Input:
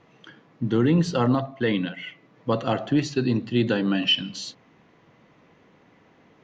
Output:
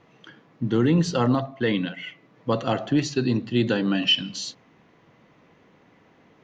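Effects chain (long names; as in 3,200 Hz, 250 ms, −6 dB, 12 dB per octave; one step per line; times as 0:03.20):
dynamic equaliser 6,500 Hz, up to +4 dB, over −46 dBFS, Q 0.98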